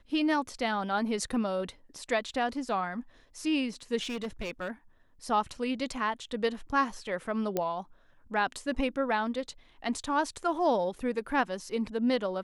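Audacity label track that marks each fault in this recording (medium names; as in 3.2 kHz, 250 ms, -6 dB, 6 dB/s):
4.020000	4.710000	clipped -30.5 dBFS
7.570000	7.570000	pop -15 dBFS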